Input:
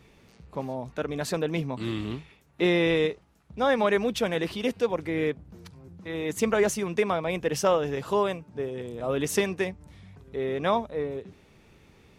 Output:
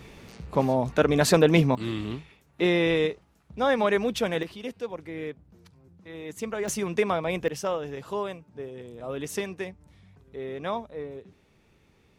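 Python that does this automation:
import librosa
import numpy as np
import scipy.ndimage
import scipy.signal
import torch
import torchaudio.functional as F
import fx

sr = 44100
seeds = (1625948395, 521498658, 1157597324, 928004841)

y = fx.gain(x, sr, db=fx.steps((0.0, 9.5), (1.75, 0.0), (4.43, -8.0), (6.68, 0.5), (7.48, -6.0)))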